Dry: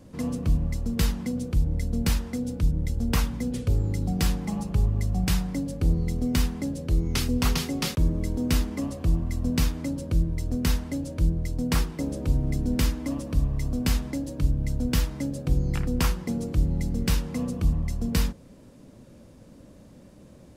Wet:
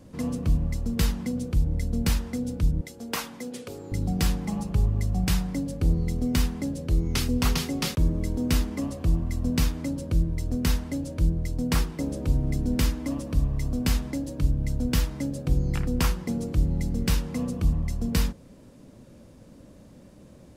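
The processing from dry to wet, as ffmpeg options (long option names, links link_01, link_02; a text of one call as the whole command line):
ffmpeg -i in.wav -filter_complex "[0:a]asettb=1/sr,asplit=3[link_01][link_02][link_03];[link_01]atrim=end=2.814[link_04];[link_02]atrim=start=2.81:end=3.92,asetpts=PTS-STARTPTS,afade=type=in:duration=0.004:curve=qsin,afade=type=out:start_time=1.106:duration=0.004:curve=qsin,highpass=360[link_05];[link_03]atrim=start=3.916[link_06];[link_04][link_05]acrossfade=duration=0.004:curve1=hsin:curve2=qsin[link_07];[link_07][link_06]acrossfade=duration=0.004:curve1=qsin:curve2=hsin" out.wav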